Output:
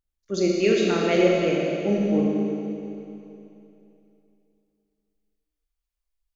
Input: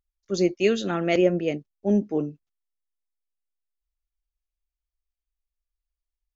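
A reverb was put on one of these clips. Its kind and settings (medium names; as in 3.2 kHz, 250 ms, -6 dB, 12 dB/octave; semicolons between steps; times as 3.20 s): Schroeder reverb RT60 2.9 s, combs from 29 ms, DRR -3 dB; trim -1.5 dB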